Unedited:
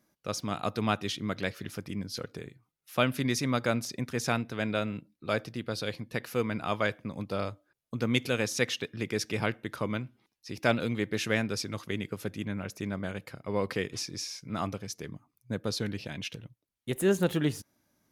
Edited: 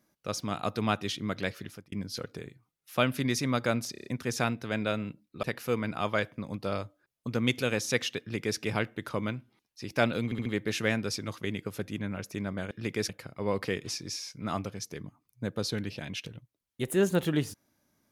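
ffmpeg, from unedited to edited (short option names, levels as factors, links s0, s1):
-filter_complex "[0:a]asplit=12[s0][s1][s2][s3][s4][s5][s6][s7][s8][s9][s10][s11];[s0]atrim=end=1.92,asetpts=PTS-STARTPTS,afade=t=out:st=1.56:d=0.36[s12];[s1]atrim=start=1.92:end=3.952,asetpts=PTS-STARTPTS,afade=t=in:d=0.004:c=hsin[s13];[s2]atrim=start=3.918:end=3.952[s14];[s3]atrim=start=3.918:end=3.952[s15];[s4]atrim=start=3.918:end=3.952[s16];[s5]atrim=start=3.918:end=5.312[s17];[s6]atrim=start=6.098:end=10.992[s18];[s7]atrim=start=10.918:end=10.992[s19];[s8]atrim=start=10.918:end=10.992[s20];[s9]atrim=start=10.918:end=13.172[s21];[s10]atrim=start=8.868:end=9.252[s22];[s11]atrim=start=13.168[s23];[s12][s13]concat=n=2:v=0:a=1[s24];[s24][s14]acrossfade=d=0.004:c1=hsin:c2=hsin[s25];[s25][s15]acrossfade=d=0.004:c1=hsin:c2=hsin[s26];[s26][s16]acrossfade=d=0.004:c1=hsin:c2=hsin[s27];[s27][s17]acrossfade=d=0.004:c1=hsin:c2=hsin[s28];[s28][s18]acrossfade=d=0.004:c1=hsin:c2=hsin[s29];[s29][s19]acrossfade=d=0.004:c1=hsin:c2=hsin[s30];[s30][s20]acrossfade=d=0.004:c1=hsin:c2=hsin[s31];[s31][s21]acrossfade=d=0.004:c1=hsin:c2=hsin[s32];[s32][s22]acrossfade=d=0.004:c1=hsin:c2=hsin[s33];[s33][s23]acrossfade=d=0.004:c1=hsin:c2=hsin"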